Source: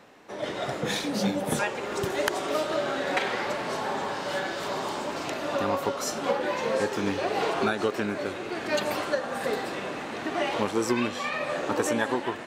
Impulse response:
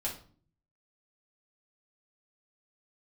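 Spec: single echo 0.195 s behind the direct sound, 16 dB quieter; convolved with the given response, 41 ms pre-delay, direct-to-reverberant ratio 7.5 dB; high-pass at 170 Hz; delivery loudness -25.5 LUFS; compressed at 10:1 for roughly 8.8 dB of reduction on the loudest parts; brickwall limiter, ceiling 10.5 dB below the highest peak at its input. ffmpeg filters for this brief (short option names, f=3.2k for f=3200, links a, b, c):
-filter_complex "[0:a]highpass=170,acompressor=threshold=-29dB:ratio=10,alimiter=level_in=2.5dB:limit=-24dB:level=0:latency=1,volume=-2.5dB,aecho=1:1:195:0.158,asplit=2[a][b];[1:a]atrim=start_sample=2205,adelay=41[c];[b][c]afir=irnorm=-1:irlink=0,volume=-10dB[d];[a][d]amix=inputs=2:normalize=0,volume=9dB"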